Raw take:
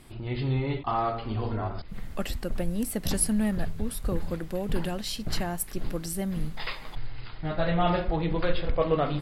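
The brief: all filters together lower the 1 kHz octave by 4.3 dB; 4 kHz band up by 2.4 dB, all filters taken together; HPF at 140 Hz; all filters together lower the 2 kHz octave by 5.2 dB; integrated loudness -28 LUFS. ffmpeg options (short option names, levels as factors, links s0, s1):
-af "highpass=140,equalizer=f=1000:t=o:g=-5,equalizer=f=2000:t=o:g=-6.5,equalizer=f=4000:t=o:g=5,volume=1.5"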